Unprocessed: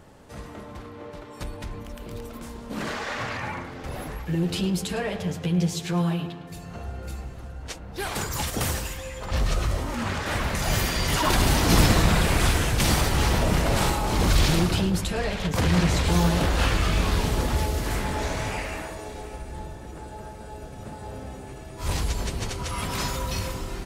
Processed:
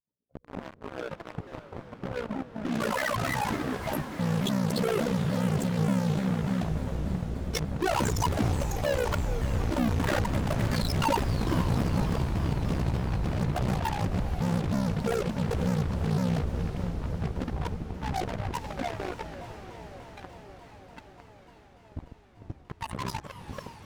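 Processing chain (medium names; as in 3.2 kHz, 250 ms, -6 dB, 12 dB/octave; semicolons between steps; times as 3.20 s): spectral contrast enhancement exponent 3.4; Doppler pass-by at 9.00 s, 7 m/s, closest 8.7 m; high-pass 140 Hz 12 dB/octave; expander -60 dBFS; in parallel at -11 dB: fuzz box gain 60 dB, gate -56 dBFS; on the sum: AM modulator 62 Hz, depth 70%; echo that smears into a reverb 515 ms, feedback 68%, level -10 dB; vibrato with a chosen wave saw down 3.4 Hz, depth 250 cents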